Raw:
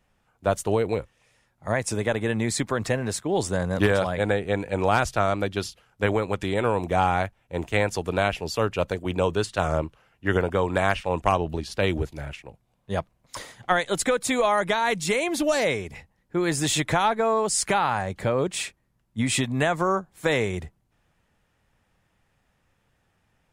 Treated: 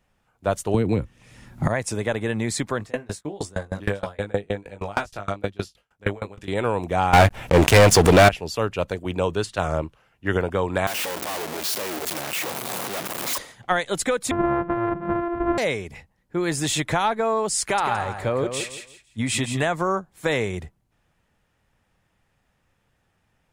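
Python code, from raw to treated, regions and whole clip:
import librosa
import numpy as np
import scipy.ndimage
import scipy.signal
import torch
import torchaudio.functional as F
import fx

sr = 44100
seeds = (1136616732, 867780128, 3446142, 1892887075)

y = fx.chain(x, sr, fx.low_shelf_res(hz=370.0, db=8.5, q=1.5),
    fx.band_squash(depth_pct=100), at=(0.74, 1.68))
y = fx.chain(y, sr, fx.doubler(ms=20.0, db=-2),
    fx.tremolo_decay(direction='decaying', hz=6.4, depth_db=28), at=(2.78, 6.48))
y = fx.chain(y, sr, fx.leveller(passes=5),
    fx.pre_swell(db_per_s=130.0), at=(7.13, 8.29))
y = fx.chain(y, sr, fx.clip_1bit(),
    fx.highpass(hz=280.0, slope=12),
    fx.high_shelf(hz=11000.0, db=8.5), at=(10.87, 13.38))
y = fx.chain(y, sr, fx.sample_sort(block=128),
    fx.lowpass(hz=1500.0, slope=24),
    fx.low_shelf(hz=130.0, db=5.5), at=(14.31, 15.58))
y = fx.chain(y, sr, fx.peak_eq(hz=180.0, db=-12.0, octaves=0.23),
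    fx.echo_feedback(ms=168, feedback_pct=26, wet_db=-8), at=(17.61, 19.65))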